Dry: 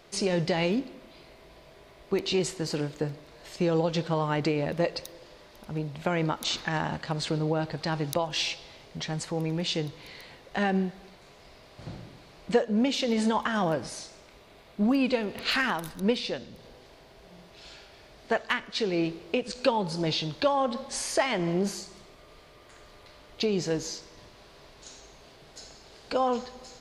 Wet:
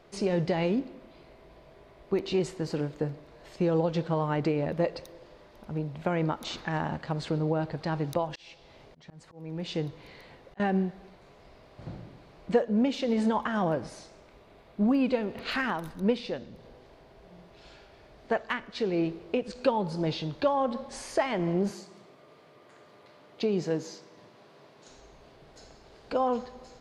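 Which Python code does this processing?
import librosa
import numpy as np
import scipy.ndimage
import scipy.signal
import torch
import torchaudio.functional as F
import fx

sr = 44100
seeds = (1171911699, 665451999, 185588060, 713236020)

y = fx.auto_swell(x, sr, attack_ms=455.0, at=(8.25, 10.6))
y = fx.highpass(y, sr, hz=130.0, slope=24, at=(21.7, 24.88))
y = fx.high_shelf(y, sr, hz=2400.0, db=-11.5)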